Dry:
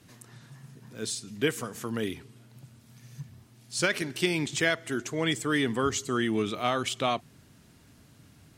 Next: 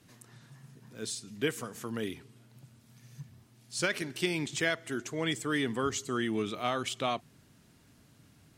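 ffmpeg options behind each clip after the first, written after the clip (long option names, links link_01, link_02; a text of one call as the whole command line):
ffmpeg -i in.wav -af "equalizer=frequency=75:width_type=o:width=0.77:gain=-3,volume=-4dB" out.wav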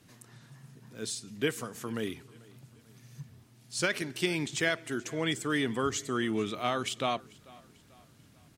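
ffmpeg -i in.wav -af "aecho=1:1:441|882|1323:0.0668|0.0301|0.0135,volume=1dB" out.wav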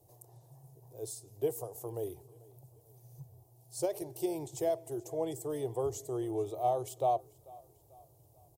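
ffmpeg -i in.wav -af "firequalizer=gain_entry='entry(130,0);entry(210,-29);entry(340,0);entry(770,7);entry(1400,-28);entry(5100,-11);entry(14000,9)':delay=0.05:min_phase=1,volume=-1.5dB" out.wav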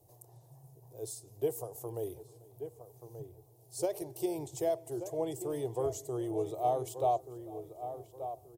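ffmpeg -i in.wav -filter_complex "[0:a]asplit=2[link_01][link_02];[link_02]adelay=1181,lowpass=frequency=1600:poles=1,volume=-10dB,asplit=2[link_03][link_04];[link_04]adelay=1181,lowpass=frequency=1600:poles=1,volume=0.34,asplit=2[link_05][link_06];[link_06]adelay=1181,lowpass=frequency=1600:poles=1,volume=0.34,asplit=2[link_07][link_08];[link_08]adelay=1181,lowpass=frequency=1600:poles=1,volume=0.34[link_09];[link_01][link_03][link_05][link_07][link_09]amix=inputs=5:normalize=0" out.wav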